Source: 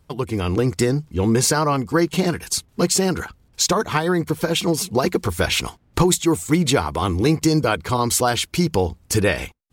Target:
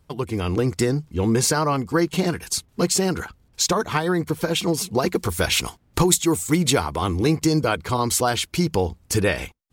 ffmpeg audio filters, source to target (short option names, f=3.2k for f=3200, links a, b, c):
-filter_complex "[0:a]asettb=1/sr,asplit=3[a][b][c];[a]atrim=end=5.154[d];[b]atrim=start=5.15:end=6.86,asetpts=PTS-STARTPTS,afade=t=in:d=0.004:c=qsin,afade=t=out:st=1.706:d=0.004:c=qsin,highshelf=f=5.2k:g=6[e];[c]atrim=start=6.856[f];[d][e]acrossfade=d=0.004:c1=hsin:c2=qsin[g];[g][f]acrossfade=d=0.004:c1=qsin:c2=hsin,volume=-2dB"